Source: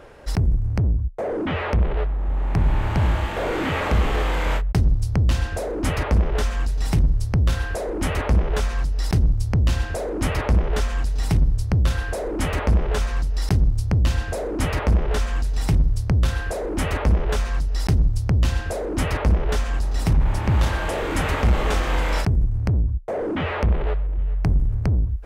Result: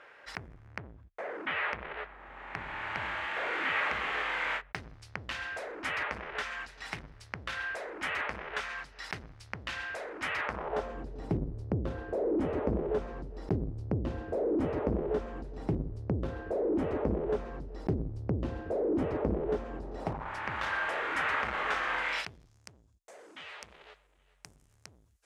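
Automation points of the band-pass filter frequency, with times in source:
band-pass filter, Q 1.5
10.42 s 1.9 kHz
10.97 s 370 Hz
19.91 s 370 Hz
20.35 s 1.6 kHz
21.98 s 1.6 kHz
22.65 s 7.5 kHz

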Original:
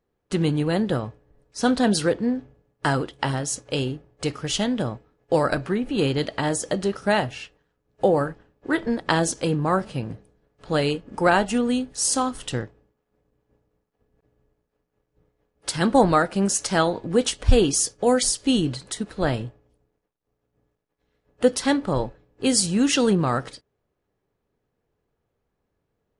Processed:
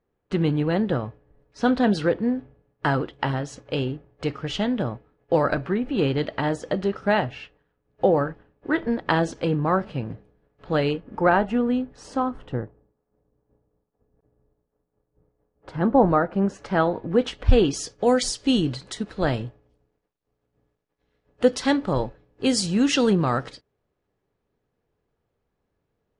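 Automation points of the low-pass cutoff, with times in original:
10.88 s 3 kHz
11.33 s 1.8 kHz
12.05 s 1.8 kHz
12.54 s 1.1 kHz
15.98 s 1.1 kHz
17.30 s 2.6 kHz
18.17 s 5.8 kHz

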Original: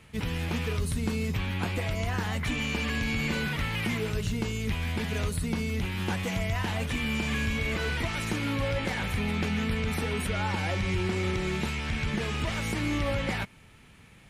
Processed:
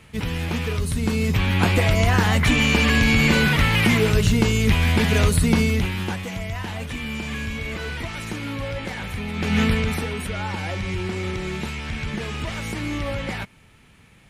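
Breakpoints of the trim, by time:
0.86 s +5 dB
1.67 s +12 dB
5.61 s +12 dB
6.26 s 0 dB
9.33 s 0 dB
9.60 s +11 dB
10.15 s +1.5 dB

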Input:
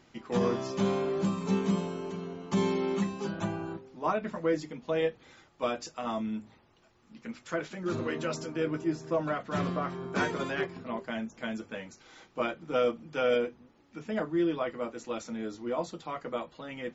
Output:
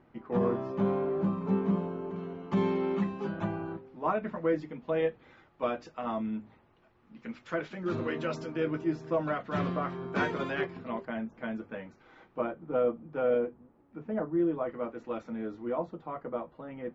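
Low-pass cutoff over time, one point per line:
1.4 kHz
from 2.16 s 2.3 kHz
from 7.19 s 3.5 kHz
from 11.05 s 1.8 kHz
from 12.41 s 1.1 kHz
from 14.69 s 1.8 kHz
from 15.78 s 1.2 kHz

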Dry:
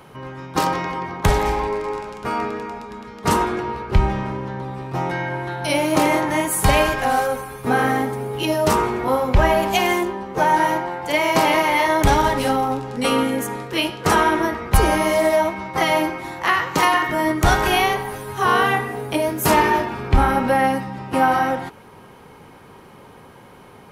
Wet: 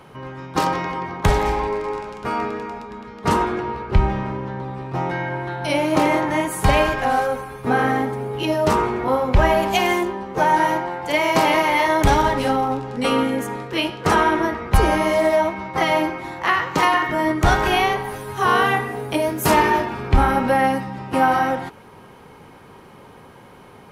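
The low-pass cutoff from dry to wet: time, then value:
low-pass 6 dB/octave
6.8 kHz
from 2.83 s 3.8 kHz
from 9.33 s 8.4 kHz
from 12.23 s 4.5 kHz
from 18.04 s 11 kHz

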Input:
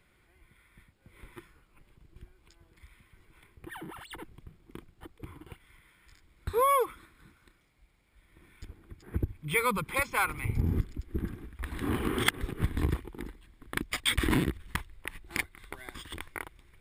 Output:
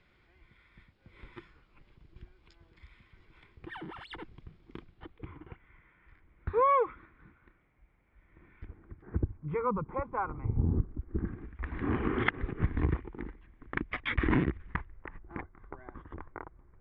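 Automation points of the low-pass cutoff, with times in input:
low-pass 24 dB/octave
4.77 s 5.3 kHz
5.51 s 2.2 kHz
8.65 s 2.2 kHz
9.73 s 1.1 kHz
10.81 s 1.1 kHz
11.48 s 2.3 kHz
14.55 s 2.3 kHz
15.38 s 1.3 kHz

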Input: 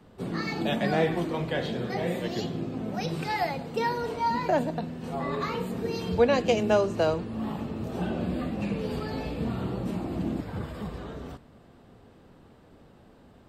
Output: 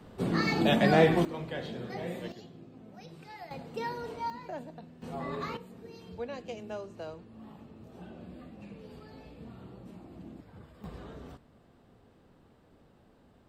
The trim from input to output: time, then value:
+3 dB
from 1.25 s -8 dB
from 2.32 s -18 dB
from 3.51 s -8 dB
from 4.30 s -15.5 dB
from 5.02 s -6 dB
from 5.57 s -17 dB
from 10.84 s -7 dB

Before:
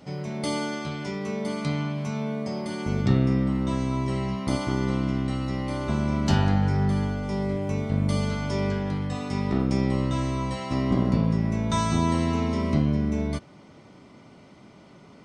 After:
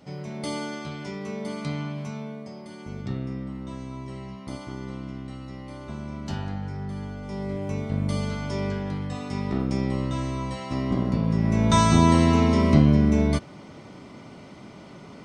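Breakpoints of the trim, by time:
2.00 s -3 dB
2.55 s -10 dB
6.87 s -10 dB
7.63 s -2 dB
11.20 s -2 dB
11.65 s +6 dB

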